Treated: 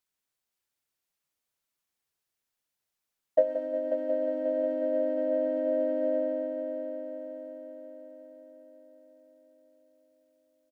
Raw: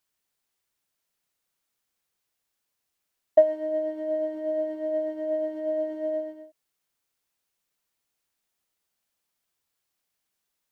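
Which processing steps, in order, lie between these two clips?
multi-head echo 0.18 s, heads first and third, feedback 66%, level -11 dB; harmoniser -3 st -2 dB; gain -7.5 dB

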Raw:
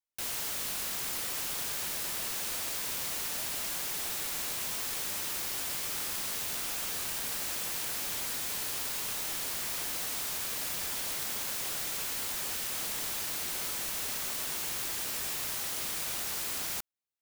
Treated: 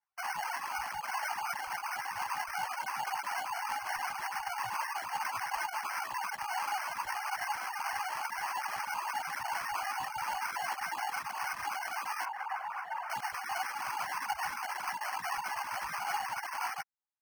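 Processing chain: sine-wave speech; chorus voices 6, 0.14 Hz, delay 15 ms, depth 2.1 ms; sample-and-hold 12×; resonant low shelf 630 Hz -11 dB, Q 3; reverb removal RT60 0.69 s; 12.25–13.1 three-band isolator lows -19 dB, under 510 Hz, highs -18 dB, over 2200 Hz

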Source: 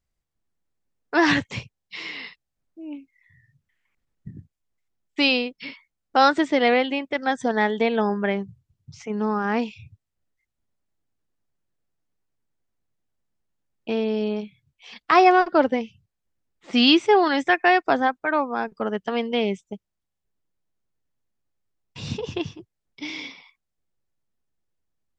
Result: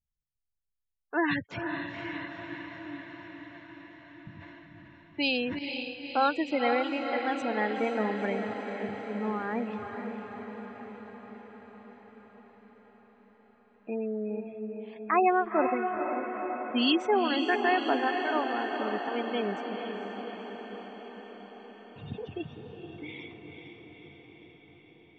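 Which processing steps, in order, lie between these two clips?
low-pass opened by the level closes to 1700 Hz, open at -19.5 dBFS; spectral gate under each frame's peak -20 dB strong; diffused feedback echo 0.485 s, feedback 68%, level -6 dB; 4.33–5.59 sustainer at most 24 dB/s; gain -8.5 dB

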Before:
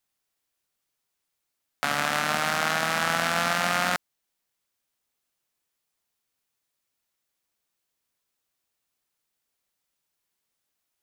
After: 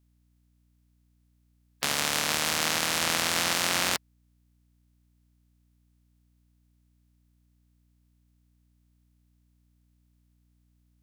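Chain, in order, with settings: spectral limiter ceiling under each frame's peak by 20 dB; hum 60 Hz, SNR 32 dB; gain -1.5 dB

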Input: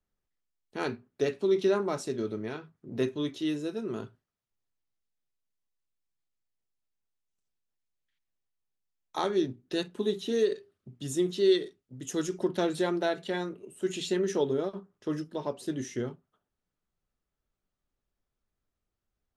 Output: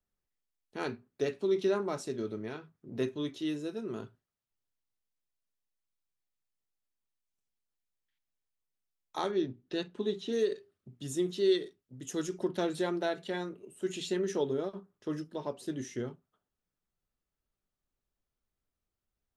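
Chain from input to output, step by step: 9.31–10.31 LPF 4100 Hz -> 6500 Hz 12 dB/oct; gain -3.5 dB

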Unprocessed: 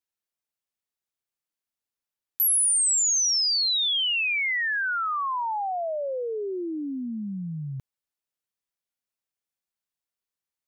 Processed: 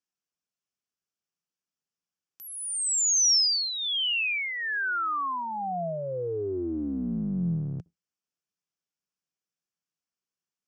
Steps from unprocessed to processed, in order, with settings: octaver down 2 oct, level +2 dB; speaker cabinet 140–7400 Hz, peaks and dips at 170 Hz +8 dB, 580 Hz -4 dB, 900 Hz -5 dB, 2000 Hz -7 dB, 3900 Hz -9 dB, 5500 Hz +4 dB; 3.96–4.38 flutter echo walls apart 8.7 m, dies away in 0.21 s

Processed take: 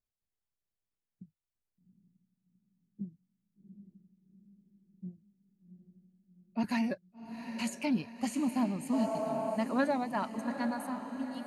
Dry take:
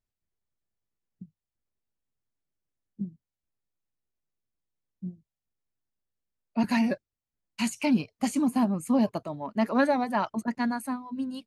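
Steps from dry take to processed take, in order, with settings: diffused feedback echo 0.769 s, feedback 53%, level -9.5 dB; spectral repair 8.96–9.54, 310–1700 Hz after; gain -6.5 dB

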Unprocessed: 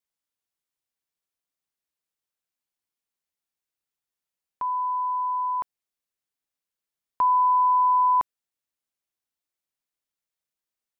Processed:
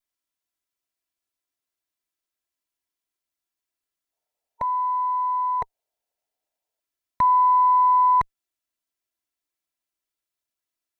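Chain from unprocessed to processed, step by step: minimum comb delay 3 ms; spectral gain 4.13–6.8, 410–940 Hz +12 dB; gain +2.5 dB

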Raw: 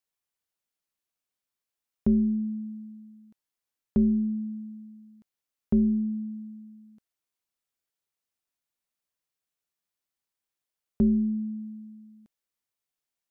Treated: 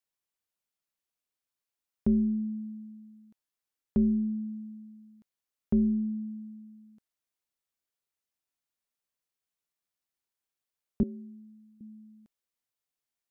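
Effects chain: 11.03–11.81 HPF 560 Hz 12 dB/oct; gain -2.5 dB

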